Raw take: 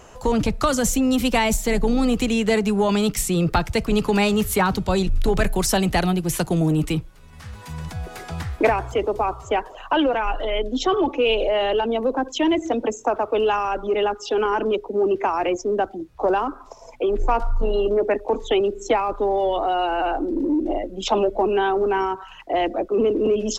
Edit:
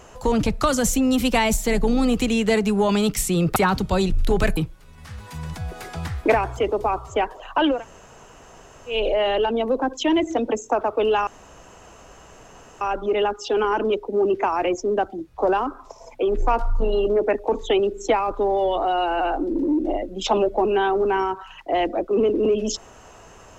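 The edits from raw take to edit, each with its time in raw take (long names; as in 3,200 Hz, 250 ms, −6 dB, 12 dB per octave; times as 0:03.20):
0:03.56–0:04.53: remove
0:05.54–0:06.92: remove
0:10.12–0:11.29: fill with room tone, crossfade 0.16 s
0:13.62: splice in room tone 1.54 s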